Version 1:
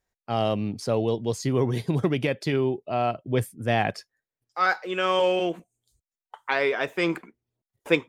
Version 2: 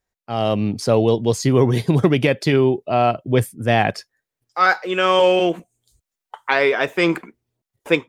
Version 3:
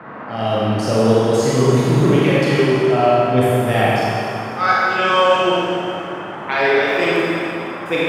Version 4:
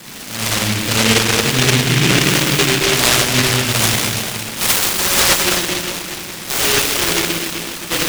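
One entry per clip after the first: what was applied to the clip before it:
level rider gain up to 9.5 dB
band noise 120–1500 Hz -33 dBFS; Schroeder reverb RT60 2.5 s, combs from 28 ms, DRR -7.5 dB; trim -5.5 dB
delay time shaken by noise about 2.5 kHz, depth 0.47 ms

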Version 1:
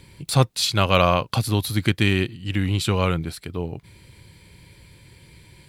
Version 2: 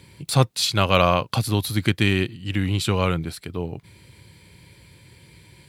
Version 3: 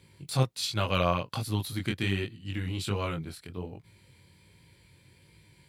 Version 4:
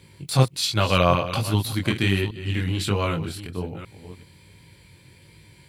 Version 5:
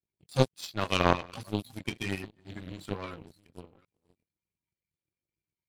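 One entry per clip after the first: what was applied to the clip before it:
high-pass 67 Hz
chorus 1.3 Hz, delay 18.5 ms, depth 4.7 ms; trim -6.5 dB
chunks repeated in reverse 385 ms, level -12 dB; trim +7.5 dB
coarse spectral quantiser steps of 30 dB; power-law waveshaper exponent 2

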